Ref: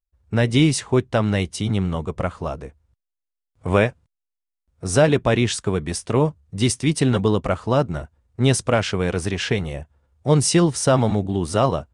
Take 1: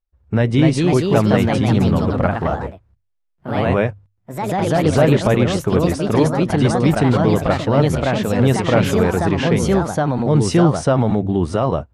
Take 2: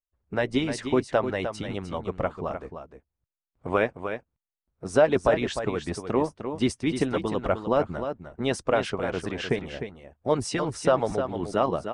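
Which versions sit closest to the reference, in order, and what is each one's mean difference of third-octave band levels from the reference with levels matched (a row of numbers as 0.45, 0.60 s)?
2, 1; 5.5, 7.5 dB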